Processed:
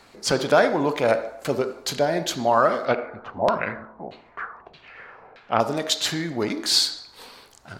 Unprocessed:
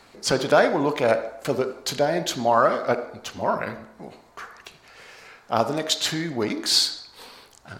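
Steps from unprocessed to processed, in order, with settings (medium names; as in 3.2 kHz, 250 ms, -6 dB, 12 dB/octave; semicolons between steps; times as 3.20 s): 2.86–5.60 s: LFO low-pass saw down 1.6 Hz 650–4000 Hz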